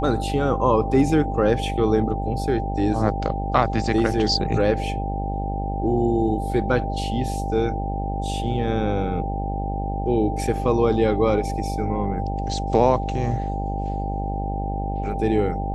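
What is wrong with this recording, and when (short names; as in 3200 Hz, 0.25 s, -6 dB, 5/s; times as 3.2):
buzz 50 Hz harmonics 18 -27 dBFS
tone 790 Hz -29 dBFS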